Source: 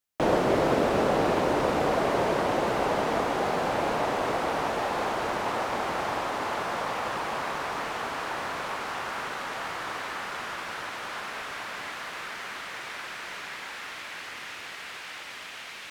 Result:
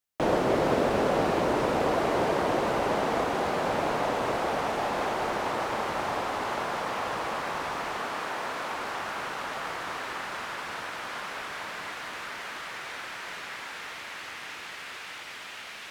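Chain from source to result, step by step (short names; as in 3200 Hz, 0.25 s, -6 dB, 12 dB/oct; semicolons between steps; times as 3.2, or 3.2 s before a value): 8.02–8.71 HPF 170 Hz; echo with dull and thin repeats by turns 0.217 s, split 1500 Hz, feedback 89%, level -11 dB; gain -1.5 dB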